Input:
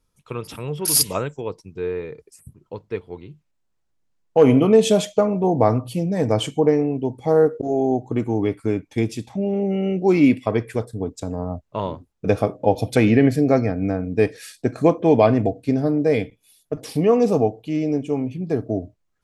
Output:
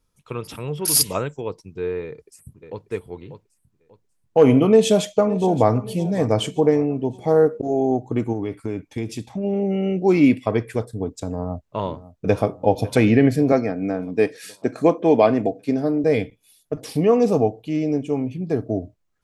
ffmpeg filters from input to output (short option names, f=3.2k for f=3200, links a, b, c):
-filter_complex "[0:a]asplit=2[a][b];[b]afade=t=in:st=2.03:d=0.01,afade=t=out:st=2.87:d=0.01,aecho=0:1:590|1180|1770:0.354813|0.106444|0.0319332[c];[a][c]amix=inputs=2:normalize=0,asplit=2[d][e];[e]afade=t=in:st=4.69:d=0.01,afade=t=out:st=5.7:d=0.01,aecho=0:1:570|1140|1710|2280:0.141254|0.0706269|0.0353134|0.0176567[f];[d][f]amix=inputs=2:normalize=0,asplit=3[g][h][i];[g]afade=t=out:st=8.32:d=0.02[j];[h]acompressor=threshold=-22dB:ratio=4:attack=3.2:release=140:knee=1:detection=peak,afade=t=in:st=8.32:d=0.02,afade=t=out:st=9.43:d=0.02[k];[i]afade=t=in:st=9.43:d=0.02[l];[j][k][l]amix=inputs=3:normalize=0,asplit=2[m][n];[n]afade=t=in:st=11.41:d=0.01,afade=t=out:st=12.46:d=0.01,aecho=0:1:550|1100|1650|2200|2750|3300:0.149624|0.0897741|0.0538645|0.0323187|0.0193912|0.0116347[o];[m][o]amix=inputs=2:normalize=0,asettb=1/sr,asplit=3[p][q][r];[p]atrim=end=13.524[s];[q]atrim=start=13.52:end=16.04,asetpts=PTS-STARTPTS,afade=t=in:d=0.004:c=qsin,afade=t=out:st=2.516:d=0.004:c=qsin,highpass=190[t];[r]atrim=start=16.036[u];[s][t]acrossfade=d=0.004:c1=hsin:c2=qsin[v];[v][u]acrossfade=d=0.004:c1=qsin:c2=hsin"